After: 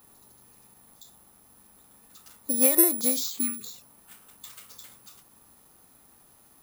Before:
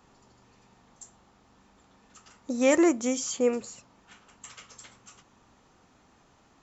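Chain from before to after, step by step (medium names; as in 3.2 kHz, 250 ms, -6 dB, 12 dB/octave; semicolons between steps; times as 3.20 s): spectral selection erased 3.39–3.65 s, 420–1100 Hz; careless resampling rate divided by 4×, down none, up zero stuff; endings held to a fixed fall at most 110 dB/s; trim -2 dB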